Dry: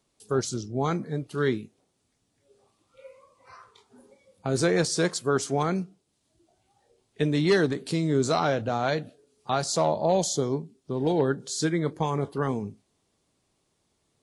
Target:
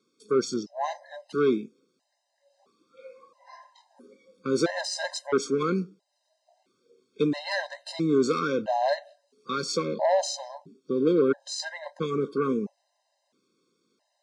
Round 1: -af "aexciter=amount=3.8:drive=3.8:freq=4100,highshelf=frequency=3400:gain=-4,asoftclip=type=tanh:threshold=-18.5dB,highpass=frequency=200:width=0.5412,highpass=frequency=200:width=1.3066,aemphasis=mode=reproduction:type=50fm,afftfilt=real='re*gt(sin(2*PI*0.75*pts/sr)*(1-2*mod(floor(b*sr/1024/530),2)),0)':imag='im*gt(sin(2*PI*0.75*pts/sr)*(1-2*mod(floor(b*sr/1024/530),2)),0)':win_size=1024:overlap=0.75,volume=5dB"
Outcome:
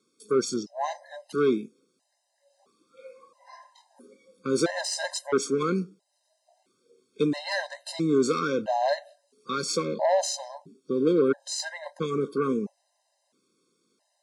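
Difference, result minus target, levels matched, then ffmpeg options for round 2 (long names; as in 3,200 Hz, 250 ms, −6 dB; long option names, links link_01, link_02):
8,000 Hz band +3.5 dB
-af "aexciter=amount=3.8:drive=3.8:freq=4100,lowpass=6000,highshelf=frequency=3400:gain=-4,asoftclip=type=tanh:threshold=-18.5dB,highpass=frequency=200:width=0.5412,highpass=frequency=200:width=1.3066,aemphasis=mode=reproduction:type=50fm,afftfilt=real='re*gt(sin(2*PI*0.75*pts/sr)*(1-2*mod(floor(b*sr/1024/530),2)),0)':imag='im*gt(sin(2*PI*0.75*pts/sr)*(1-2*mod(floor(b*sr/1024/530),2)),0)':win_size=1024:overlap=0.75,volume=5dB"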